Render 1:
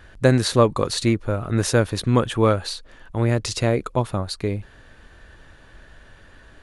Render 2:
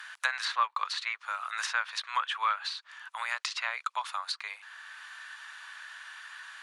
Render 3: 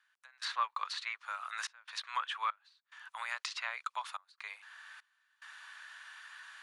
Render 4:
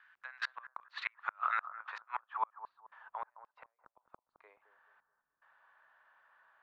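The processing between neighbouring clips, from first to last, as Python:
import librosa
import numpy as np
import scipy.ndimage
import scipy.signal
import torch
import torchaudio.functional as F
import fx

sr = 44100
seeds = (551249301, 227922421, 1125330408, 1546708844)

y1 = scipy.signal.sosfilt(scipy.signal.butter(6, 1000.0, 'highpass', fs=sr, output='sos'), x)
y1 = fx.env_lowpass_down(y1, sr, base_hz=2800.0, full_db=-25.0)
y1 = fx.band_squash(y1, sr, depth_pct=40)
y2 = fx.step_gate(y1, sr, bpm=72, pattern='..xxxxxx.xxx', floor_db=-24.0, edge_ms=4.5)
y2 = F.gain(torch.from_numpy(y2), -5.5).numpy()
y3 = fx.gate_flip(y2, sr, shuts_db=-28.0, range_db=-39)
y3 = fx.echo_bbd(y3, sr, ms=214, stages=2048, feedback_pct=35, wet_db=-12.0)
y3 = fx.filter_sweep_lowpass(y3, sr, from_hz=1900.0, to_hz=340.0, start_s=0.98, end_s=4.23, q=0.98)
y3 = F.gain(torch.from_numpy(y3), 10.5).numpy()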